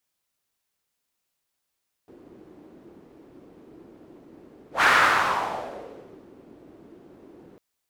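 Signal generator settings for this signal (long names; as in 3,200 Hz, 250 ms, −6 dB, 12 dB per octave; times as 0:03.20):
pass-by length 5.50 s, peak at 0:02.75, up 0.13 s, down 1.55 s, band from 330 Hz, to 1,500 Hz, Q 2.8, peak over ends 32 dB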